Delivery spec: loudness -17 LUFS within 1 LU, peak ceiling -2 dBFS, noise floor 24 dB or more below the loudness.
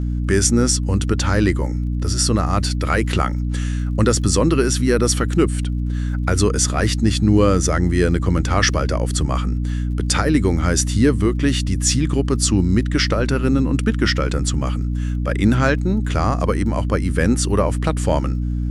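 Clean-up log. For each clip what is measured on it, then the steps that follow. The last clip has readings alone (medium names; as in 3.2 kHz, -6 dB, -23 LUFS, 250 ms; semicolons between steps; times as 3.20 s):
tick rate 29 per s; hum 60 Hz; highest harmonic 300 Hz; hum level -19 dBFS; loudness -19.0 LUFS; peak level -2.5 dBFS; loudness target -17.0 LUFS
-> de-click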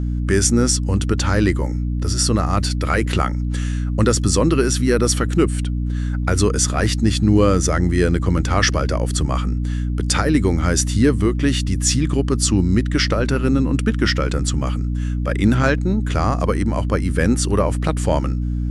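tick rate 0 per s; hum 60 Hz; highest harmonic 300 Hz; hum level -19 dBFS
-> hum notches 60/120/180/240/300 Hz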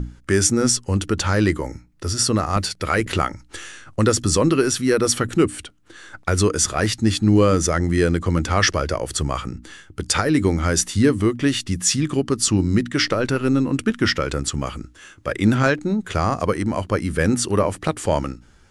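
hum not found; loudness -20.0 LUFS; peak level -2.5 dBFS; loudness target -17.0 LUFS
-> trim +3 dB; peak limiter -2 dBFS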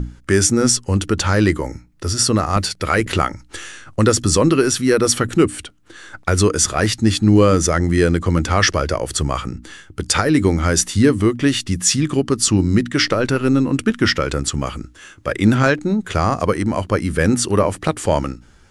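loudness -17.0 LUFS; peak level -2.0 dBFS; noise floor -49 dBFS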